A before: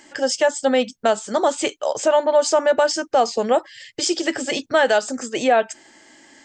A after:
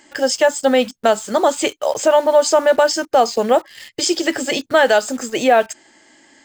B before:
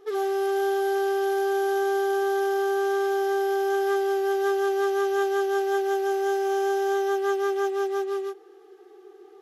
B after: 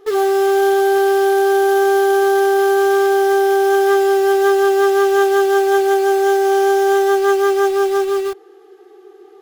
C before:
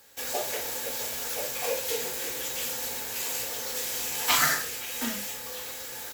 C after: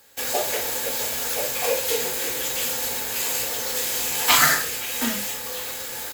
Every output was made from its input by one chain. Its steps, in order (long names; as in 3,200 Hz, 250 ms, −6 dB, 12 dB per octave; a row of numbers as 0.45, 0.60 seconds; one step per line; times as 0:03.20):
notch filter 5,700 Hz, Q 17
in parallel at −3.5 dB: bit-depth reduction 6 bits, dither none
on the sum: normalise the peak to −3 dBFS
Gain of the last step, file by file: −1.0, +6.0, +2.0 decibels